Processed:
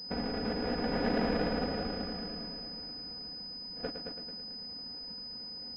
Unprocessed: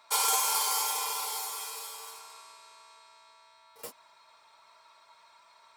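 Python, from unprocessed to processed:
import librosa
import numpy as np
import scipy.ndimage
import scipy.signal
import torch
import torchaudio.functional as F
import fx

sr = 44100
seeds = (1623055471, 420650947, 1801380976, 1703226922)

y = fx.pitch_keep_formants(x, sr, semitones=6.5)
y = fx.sample_hold(y, sr, seeds[0], rate_hz=1100.0, jitter_pct=20)
y = fx.air_absorb(y, sr, metres=120.0)
y = fx.echo_heads(y, sr, ms=110, heads='first and second', feedback_pct=48, wet_db=-8.5)
y = fx.over_compress(y, sr, threshold_db=-33.0, ratio=-1.0)
y = fx.low_shelf(y, sr, hz=60.0, db=-9.0)
y = y + 0.89 * np.pad(y, (int(4.1 * sr / 1000.0), 0))[:len(y)]
y = fx.pwm(y, sr, carrier_hz=5000.0)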